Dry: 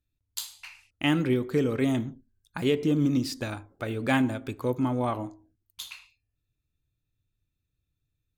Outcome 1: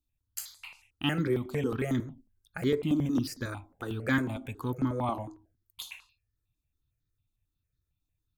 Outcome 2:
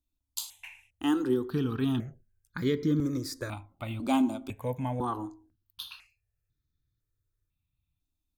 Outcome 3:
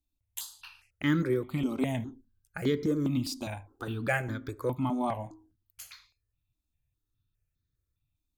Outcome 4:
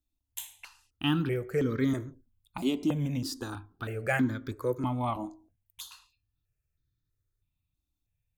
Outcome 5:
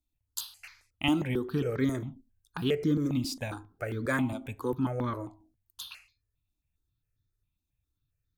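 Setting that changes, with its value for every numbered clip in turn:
step phaser, rate: 11, 2, 4.9, 3.1, 7.4 Hz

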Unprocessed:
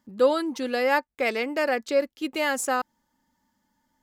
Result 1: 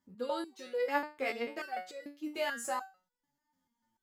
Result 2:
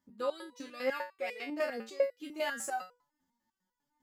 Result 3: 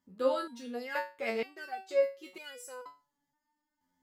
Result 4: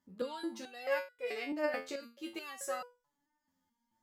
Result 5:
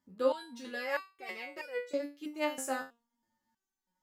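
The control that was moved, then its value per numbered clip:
stepped resonator, rate: 6.8, 10, 2.1, 4.6, 3.1 Hz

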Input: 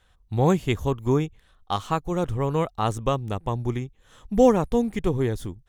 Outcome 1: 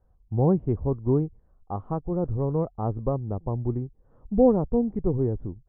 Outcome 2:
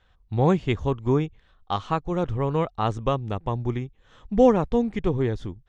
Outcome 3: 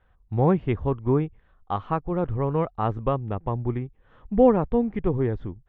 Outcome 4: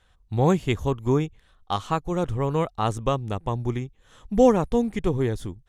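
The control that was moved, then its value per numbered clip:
Bessel low-pass, frequency: 590, 4100, 1600, 11000 Hz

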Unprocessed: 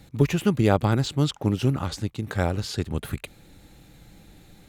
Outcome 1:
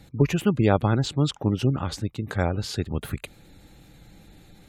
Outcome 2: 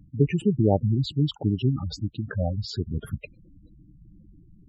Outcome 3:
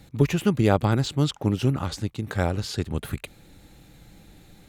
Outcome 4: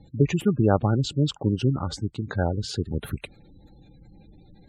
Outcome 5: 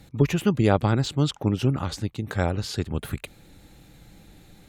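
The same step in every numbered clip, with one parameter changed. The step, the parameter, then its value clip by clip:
spectral gate, under each frame's peak: -35, -10, -60, -20, -45 dB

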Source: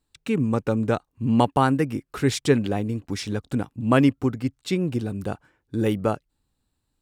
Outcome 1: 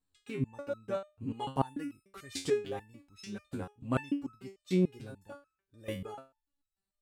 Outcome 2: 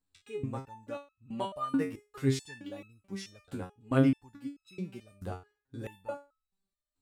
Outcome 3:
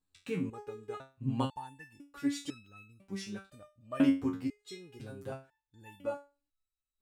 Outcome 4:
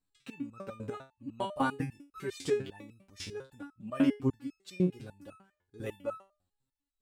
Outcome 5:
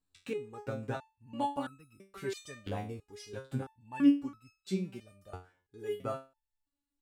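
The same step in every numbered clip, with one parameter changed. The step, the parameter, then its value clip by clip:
stepped resonator, rate: 6.8, 4.6, 2, 10, 3 Hz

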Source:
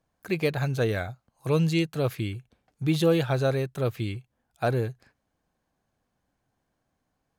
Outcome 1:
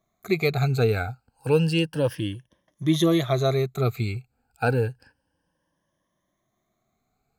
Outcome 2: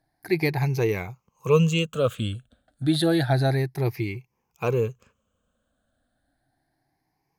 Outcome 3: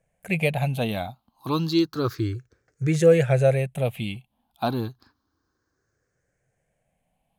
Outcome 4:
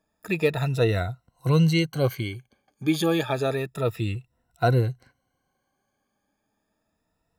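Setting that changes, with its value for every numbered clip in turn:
moving spectral ripple, ripples per octave: 1.2, 0.78, 0.51, 2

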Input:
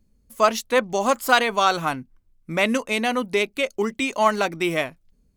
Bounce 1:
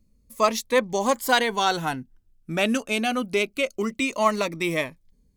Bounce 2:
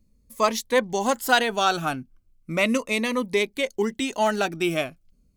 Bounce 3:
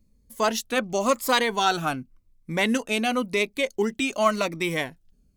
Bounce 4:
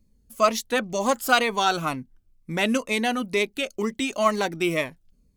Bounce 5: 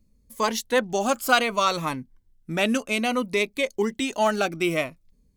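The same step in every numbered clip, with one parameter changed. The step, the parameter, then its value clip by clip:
cascading phaser, rate: 0.24, 0.36, 0.9, 2.1, 0.61 Hz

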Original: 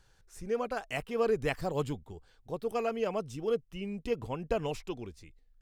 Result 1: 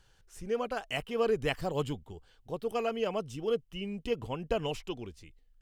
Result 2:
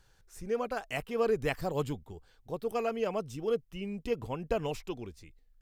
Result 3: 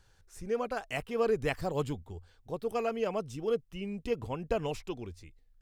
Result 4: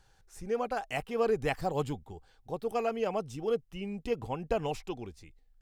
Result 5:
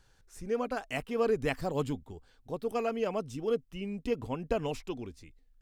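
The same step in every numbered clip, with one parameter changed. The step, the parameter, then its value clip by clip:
bell, frequency: 3000, 14000, 87, 790, 260 Hz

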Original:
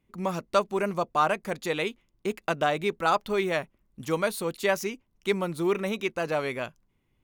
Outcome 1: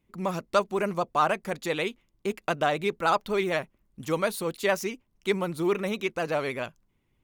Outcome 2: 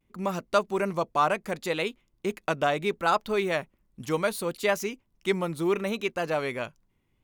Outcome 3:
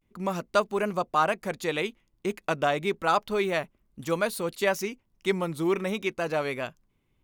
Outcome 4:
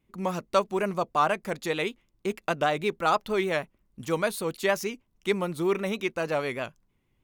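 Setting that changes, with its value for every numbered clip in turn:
vibrato, rate: 16, 0.7, 0.32, 6.4 Hz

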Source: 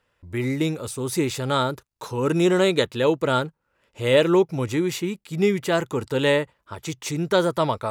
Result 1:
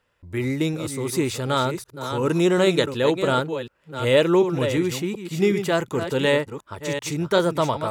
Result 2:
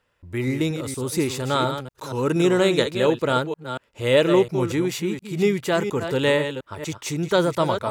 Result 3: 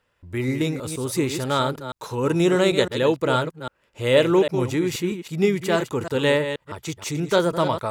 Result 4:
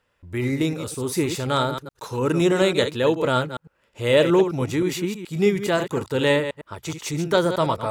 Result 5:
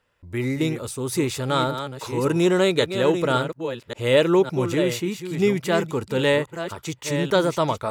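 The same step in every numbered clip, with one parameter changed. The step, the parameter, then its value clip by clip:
reverse delay, time: 0.368, 0.236, 0.16, 0.105, 0.562 s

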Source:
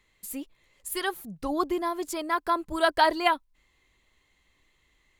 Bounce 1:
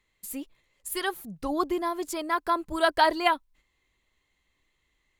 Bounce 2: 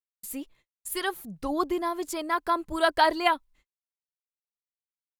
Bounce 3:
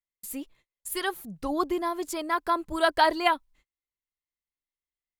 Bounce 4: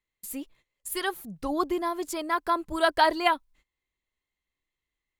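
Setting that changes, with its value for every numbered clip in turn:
gate, range: -6, -59, -34, -20 dB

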